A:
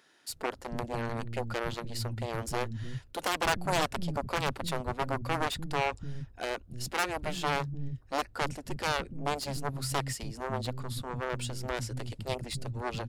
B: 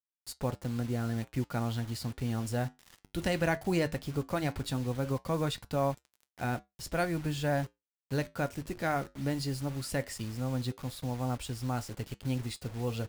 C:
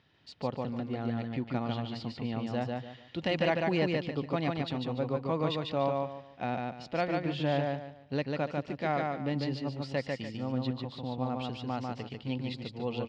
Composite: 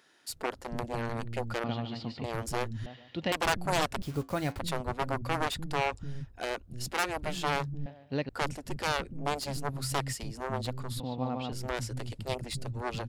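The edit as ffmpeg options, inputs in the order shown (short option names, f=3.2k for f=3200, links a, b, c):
-filter_complex "[2:a]asplit=4[a][b][c][d];[0:a]asplit=6[e][f][g][h][i][j];[e]atrim=end=1.642[k];[a]atrim=start=1.638:end=2.242[l];[f]atrim=start=2.238:end=2.862[m];[b]atrim=start=2.858:end=3.322[n];[g]atrim=start=3.318:end=4.022[o];[1:a]atrim=start=4.018:end=4.592[p];[h]atrim=start=4.588:end=7.862[q];[c]atrim=start=7.858:end=8.292[r];[i]atrim=start=8.288:end=11.002[s];[d]atrim=start=10.998:end=11.522[t];[j]atrim=start=11.518[u];[k][l]acrossfade=d=0.004:c1=hsin:c2=hsin[v];[v][m]acrossfade=d=0.004:c1=hsin:c2=hsin[w];[w][n]acrossfade=d=0.004:c1=hsin:c2=hsin[x];[x][o]acrossfade=d=0.004:c1=hsin:c2=hsin[y];[y][p]acrossfade=d=0.004:c1=hsin:c2=hsin[z];[z][q]acrossfade=d=0.004:c1=hsin:c2=hsin[aa];[aa][r]acrossfade=d=0.004:c1=hsin:c2=hsin[ab];[ab][s]acrossfade=d=0.004:c1=hsin:c2=hsin[ac];[ac][t]acrossfade=d=0.004:c1=hsin:c2=hsin[ad];[ad][u]acrossfade=d=0.004:c1=hsin:c2=hsin"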